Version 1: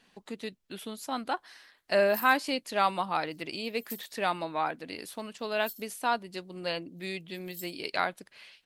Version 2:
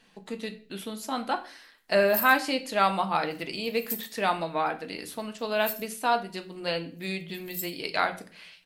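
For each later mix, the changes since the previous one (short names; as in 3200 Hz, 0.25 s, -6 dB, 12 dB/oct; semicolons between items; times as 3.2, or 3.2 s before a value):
background: add tilt +2 dB/oct; reverb: on, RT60 0.40 s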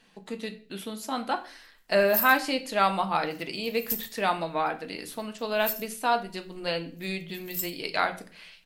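background: remove rippled Chebyshev high-pass 3000 Hz, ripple 6 dB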